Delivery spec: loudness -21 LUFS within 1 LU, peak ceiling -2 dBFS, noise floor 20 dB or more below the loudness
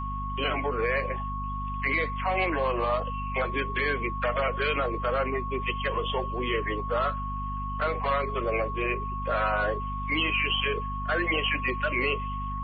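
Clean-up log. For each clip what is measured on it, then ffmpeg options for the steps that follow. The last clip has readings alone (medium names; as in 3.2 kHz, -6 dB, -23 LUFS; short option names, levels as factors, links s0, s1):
hum 50 Hz; highest harmonic 250 Hz; hum level -32 dBFS; steady tone 1.1 kHz; tone level -33 dBFS; loudness -28.0 LUFS; peak level -14.0 dBFS; loudness target -21.0 LUFS
-> -af "bandreject=f=50:t=h:w=6,bandreject=f=100:t=h:w=6,bandreject=f=150:t=h:w=6,bandreject=f=200:t=h:w=6,bandreject=f=250:t=h:w=6"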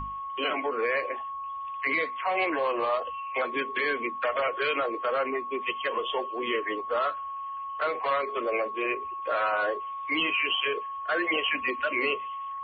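hum not found; steady tone 1.1 kHz; tone level -33 dBFS
-> -af "bandreject=f=1100:w=30"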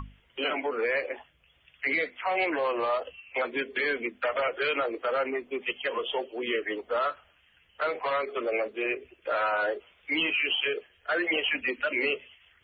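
steady tone not found; loudness -29.0 LUFS; peak level -16.0 dBFS; loudness target -21.0 LUFS
-> -af "volume=2.51"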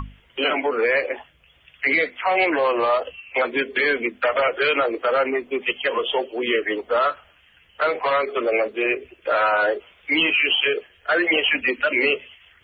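loudness -21.0 LUFS; peak level -8.0 dBFS; noise floor -56 dBFS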